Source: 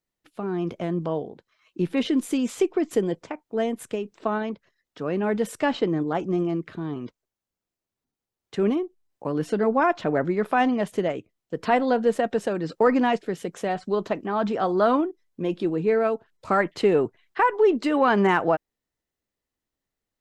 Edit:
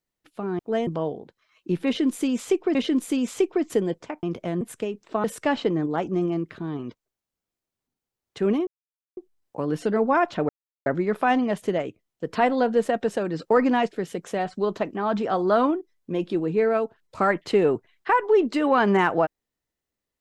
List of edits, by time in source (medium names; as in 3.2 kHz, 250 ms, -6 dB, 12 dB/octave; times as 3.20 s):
0.59–0.97 s: swap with 3.44–3.72 s
1.96–2.85 s: loop, 2 plays
4.35–5.41 s: delete
8.84 s: insert silence 0.50 s
10.16 s: insert silence 0.37 s